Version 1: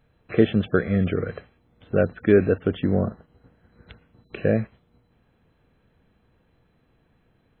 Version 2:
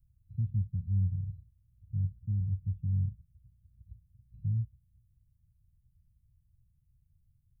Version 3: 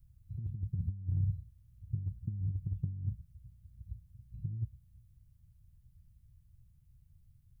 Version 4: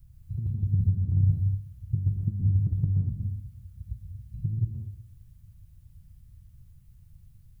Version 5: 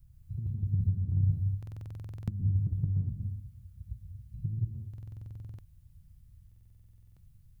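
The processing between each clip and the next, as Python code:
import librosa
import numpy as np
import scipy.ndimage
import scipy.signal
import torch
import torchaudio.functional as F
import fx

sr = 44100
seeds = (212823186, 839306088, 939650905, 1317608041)

y1 = scipy.signal.sosfilt(scipy.signal.cheby2(4, 60, [360.0, 3400.0], 'bandstop', fs=sr, output='sos'), x)
y2 = fx.over_compress(y1, sr, threshold_db=-34.0, ratio=-0.5)
y2 = y2 * 10.0 ** (1.0 / 20.0)
y3 = fx.rev_plate(y2, sr, seeds[0], rt60_s=0.71, hf_ratio=0.95, predelay_ms=105, drr_db=1.0)
y3 = y3 * 10.0 ** (8.5 / 20.0)
y4 = fx.buffer_glitch(y3, sr, at_s=(1.58, 4.89, 6.47), block=2048, repeats=14)
y4 = y4 * 10.0 ** (-4.5 / 20.0)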